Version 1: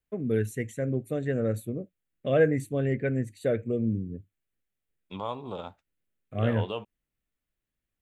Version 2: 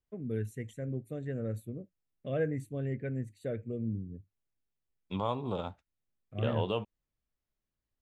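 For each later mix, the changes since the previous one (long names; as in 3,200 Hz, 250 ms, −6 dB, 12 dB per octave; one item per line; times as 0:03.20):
first voice −11.5 dB
master: add low-shelf EQ 210 Hz +8 dB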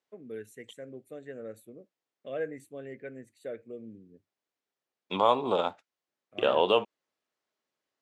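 second voice +11.0 dB
master: add high-pass filter 390 Hz 12 dB per octave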